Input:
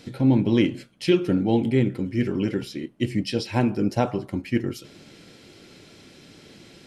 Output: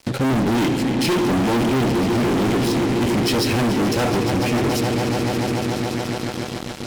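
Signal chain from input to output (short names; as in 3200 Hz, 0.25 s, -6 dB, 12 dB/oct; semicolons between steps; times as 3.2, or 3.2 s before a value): swelling echo 0.143 s, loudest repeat 5, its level -16 dB; fuzz box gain 34 dB, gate -43 dBFS; added harmonics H 8 -22 dB, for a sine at -10 dBFS; gain -4 dB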